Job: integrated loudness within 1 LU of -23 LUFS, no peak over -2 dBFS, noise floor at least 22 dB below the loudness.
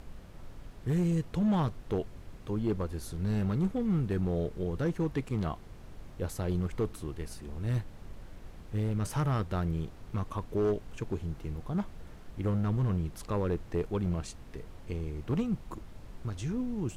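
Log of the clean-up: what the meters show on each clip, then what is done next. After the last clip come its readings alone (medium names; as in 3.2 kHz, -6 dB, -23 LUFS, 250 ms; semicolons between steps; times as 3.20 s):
clipped samples 1.7%; clipping level -23.0 dBFS; noise floor -49 dBFS; noise floor target -55 dBFS; loudness -33.0 LUFS; peak level -23.0 dBFS; loudness target -23.0 LUFS
-> clip repair -23 dBFS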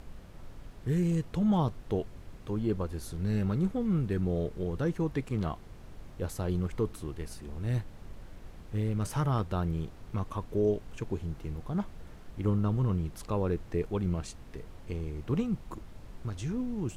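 clipped samples 0.0%; noise floor -49 dBFS; noise floor target -55 dBFS
-> noise print and reduce 6 dB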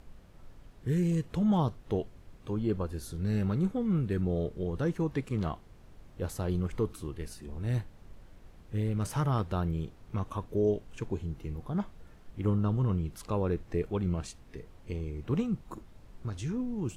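noise floor -54 dBFS; noise floor target -55 dBFS
-> noise print and reduce 6 dB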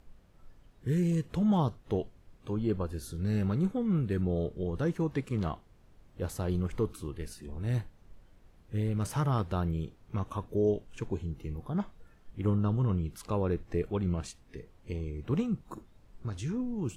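noise floor -60 dBFS; loudness -32.5 LUFS; peak level -16.0 dBFS; loudness target -23.0 LUFS
-> trim +9.5 dB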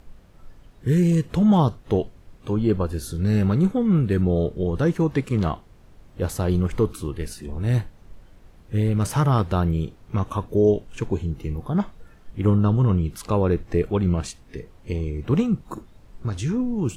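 loudness -23.0 LUFS; peak level -6.5 dBFS; noise floor -50 dBFS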